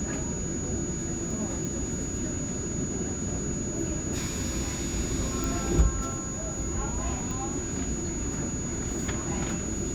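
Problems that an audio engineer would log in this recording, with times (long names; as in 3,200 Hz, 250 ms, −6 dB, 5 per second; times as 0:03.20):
whistle 6,800 Hz −35 dBFS
0:01.65: click
0:05.44: click
0:07.31: click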